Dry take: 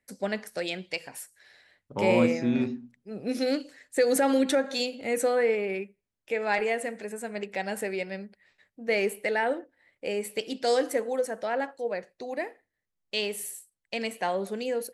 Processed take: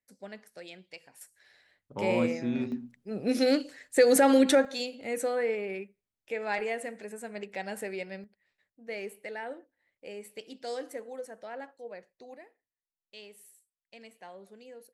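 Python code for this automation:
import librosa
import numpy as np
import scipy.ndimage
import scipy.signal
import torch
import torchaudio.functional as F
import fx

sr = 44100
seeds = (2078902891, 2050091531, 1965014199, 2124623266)

y = fx.gain(x, sr, db=fx.steps((0.0, -14.0), (1.21, -5.0), (2.72, 2.5), (4.65, -5.0), (8.24, -12.0), (12.37, -19.0)))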